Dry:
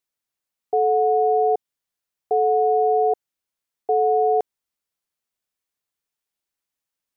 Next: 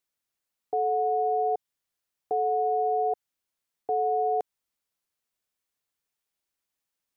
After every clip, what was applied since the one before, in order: dynamic bell 330 Hz, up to -6 dB, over -34 dBFS, Q 1.2; peak limiter -19.5 dBFS, peak gain reduction 5.5 dB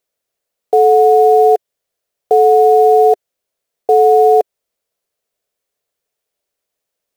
high-order bell 520 Hz +10 dB 1 oct; in parallel at -6 dB: bit crusher 6-bit; on the sum: trim +6 dB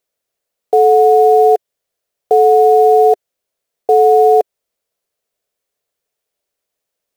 no audible change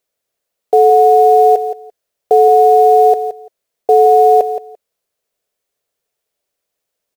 feedback delay 171 ms, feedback 16%, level -11 dB; trim +1 dB

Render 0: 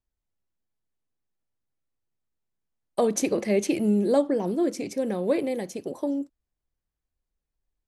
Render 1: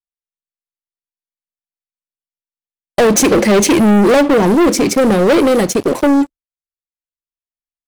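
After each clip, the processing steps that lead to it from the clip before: gate with hold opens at -31 dBFS; waveshaping leveller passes 5; trim +4 dB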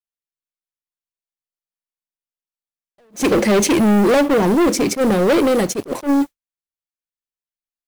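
modulation noise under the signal 29 dB; attacks held to a fixed rise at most 300 dB/s; trim -4 dB

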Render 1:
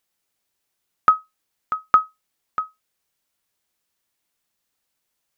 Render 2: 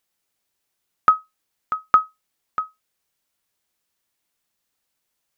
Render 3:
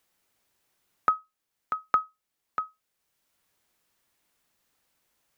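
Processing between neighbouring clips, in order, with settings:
no audible change
three bands compressed up and down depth 40%; trim -6 dB

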